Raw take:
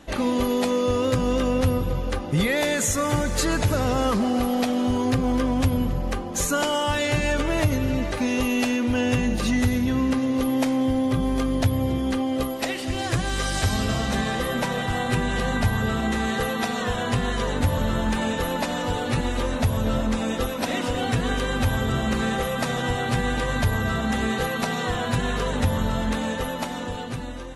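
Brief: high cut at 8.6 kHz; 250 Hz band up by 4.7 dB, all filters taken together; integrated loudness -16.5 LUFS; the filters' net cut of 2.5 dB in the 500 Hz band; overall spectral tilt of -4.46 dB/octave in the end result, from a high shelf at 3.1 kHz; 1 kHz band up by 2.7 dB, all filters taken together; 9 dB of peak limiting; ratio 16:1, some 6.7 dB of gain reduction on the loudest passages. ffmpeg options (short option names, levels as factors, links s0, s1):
-af "lowpass=8600,equalizer=f=250:t=o:g=6,equalizer=f=500:t=o:g=-5.5,equalizer=f=1000:t=o:g=4,highshelf=f=3100:g=8,acompressor=threshold=0.0891:ratio=16,volume=3.76,alimiter=limit=0.376:level=0:latency=1"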